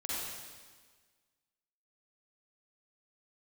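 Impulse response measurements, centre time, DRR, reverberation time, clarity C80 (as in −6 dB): 127 ms, −8.0 dB, 1.5 s, −2.0 dB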